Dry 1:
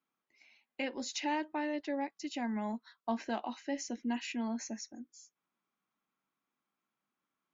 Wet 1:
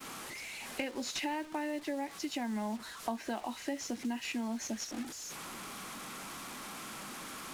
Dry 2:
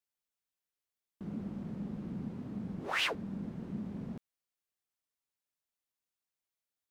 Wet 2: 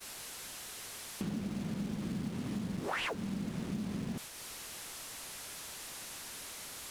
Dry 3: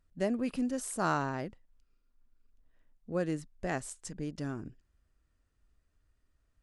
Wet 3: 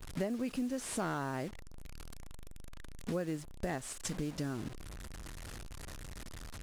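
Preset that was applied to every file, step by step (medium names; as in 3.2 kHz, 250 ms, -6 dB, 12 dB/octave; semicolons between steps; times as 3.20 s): one-bit delta coder 64 kbps, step -45 dBFS; expander -46 dBFS; compression 4:1, threshold -52 dBFS; companded quantiser 8-bit; trim +15 dB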